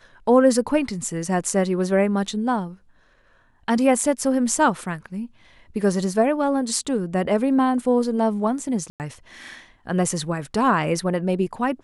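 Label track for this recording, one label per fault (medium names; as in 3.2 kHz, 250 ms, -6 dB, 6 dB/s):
8.900000	9.000000	dropout 98 ms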